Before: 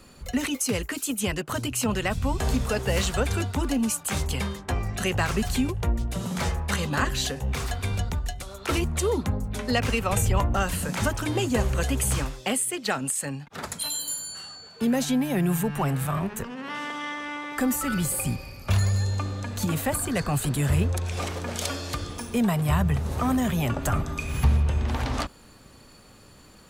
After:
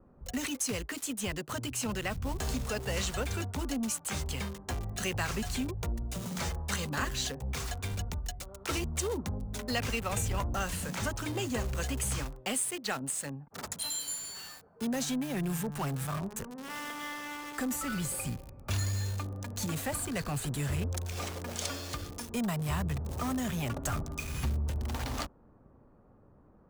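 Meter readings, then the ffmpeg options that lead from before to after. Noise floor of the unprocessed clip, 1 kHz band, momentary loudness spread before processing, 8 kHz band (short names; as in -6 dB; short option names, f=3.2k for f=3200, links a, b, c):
-50 dBFS, -8.0 dB, 8 LU, -5.0 dB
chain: -filter_complex "[0:a]equalizer=f=6.3k:t=o:w=1.2:g=6,acrossover=split=1200[a][b];[a]asoftclip=type=tanh:threshold=-19.5dB[c];[b]acrusher=bits=5:mix=0:aa=0.000001[d];[c][d]amix=inputs=2:normalize=0,adynamicequalizer=threshold=0.01:dfrequency=3800:dqfactor=0.7:tfrequency=3800:tqfactor=0.7:attack=5:release=100:ratio=0.375:range=2.5:mode=cutabove:tftype=highshelf,volume=-7dB"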